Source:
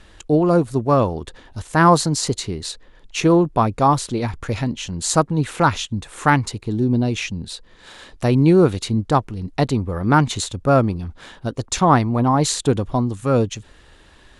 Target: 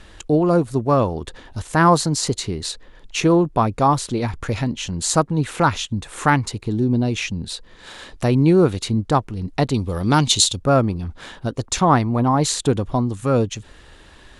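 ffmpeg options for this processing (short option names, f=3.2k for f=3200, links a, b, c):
-filter_complex "[0:a]asettb=1/sr,asplit=3[a][b][c];[a]atrim=end=9.744[d];[b]atrim=start=9.74:end=10.59,asetpts=PTS-STARTPTS,afade=t=in:d=0.004:c=qsin,afade=t=out:st=0.846:d=0.004:c=qsin,highshelf=f=2.5k:t=q:w=1.5:g=10[e];[c]atrim=start=10.586[f];[d][e]acrossfade=d=0.004:c1=hsin:c2=qsin[g];[g][f]acrossfade=d=0.004:c1=qsin:c2=hsin,asplit=2[h][i];[i]acompressor=threshold=-28dB:ratio=6,volume=-2dB[j];[h][j]amix=inputs=2:normalize=0,volume=-2dB"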